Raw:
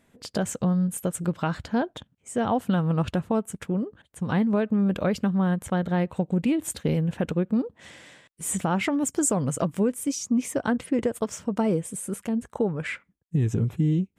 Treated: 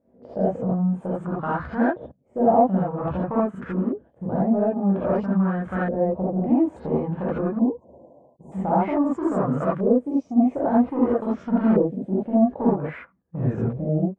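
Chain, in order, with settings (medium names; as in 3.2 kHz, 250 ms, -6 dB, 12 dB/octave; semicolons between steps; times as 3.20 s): in parallel at -5.5 dB: crossover distortion -44 dBFS; 11.22–12.73 s: on the sum: ten-band graphic EQ 250 Hz +8 dB, 1 kHz -8 dB, 4 kHz +9 dB, 8 kHz -9 dB; saturation -17 dBFS, distortion -12 dB; bass shelf 73 Hz -7.5 dB; gated-style reverb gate 100 ms rising, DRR -7.5 dB; LFO low-pass saw up 0.51 Hz 540–1500 Hz; 7.59–8.52 s: brick-wall FIR band-stop 1.1–5.9 kHz; trim -7 dB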